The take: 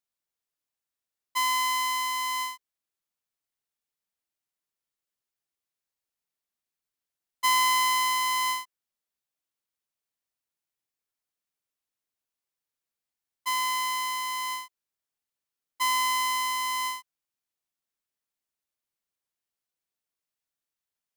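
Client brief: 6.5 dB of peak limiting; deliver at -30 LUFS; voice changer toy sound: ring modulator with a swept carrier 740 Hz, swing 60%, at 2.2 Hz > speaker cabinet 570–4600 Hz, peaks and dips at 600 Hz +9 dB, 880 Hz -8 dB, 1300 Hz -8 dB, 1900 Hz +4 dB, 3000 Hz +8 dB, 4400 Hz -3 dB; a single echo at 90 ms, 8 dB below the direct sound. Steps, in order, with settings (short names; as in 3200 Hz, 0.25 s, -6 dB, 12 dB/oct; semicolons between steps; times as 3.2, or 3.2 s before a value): limiter -23 dBFS; echo 90 ms -8 dB; ring modulator with a swept carrier 740 Hz, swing 60%, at 2.2 Hz; speaker cabinet 570–4600 Hz, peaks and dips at 600 Hz +9 dB, 880 Hz -8 dB, 1300 Hz -8 dB, 1900 Hz +4 dB, 3000 Hz +8 dB, 4400 Hz -3 dB; gain +0.5 dB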